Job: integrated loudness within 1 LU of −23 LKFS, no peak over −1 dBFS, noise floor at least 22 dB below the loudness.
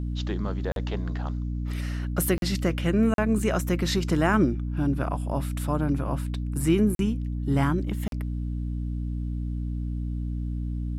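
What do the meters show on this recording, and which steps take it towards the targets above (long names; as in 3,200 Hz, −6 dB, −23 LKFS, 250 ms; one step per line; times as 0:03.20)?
number of dropouts 5; longest dropout 42 ms; mains hum 60 Hz; hum harmonics up to 300 Hz; level of the hum −27 dBFS; integrated loudness −27.5 LKFS; sample peak −10.5 dBFS; target loudness −23.0 LKFS
→ repair the gap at 0:00.72/0:02.38/0:03.14/0:06.95/0:08.08, 42 ms
hum removal 60 Hz, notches 5
level +4.5 dB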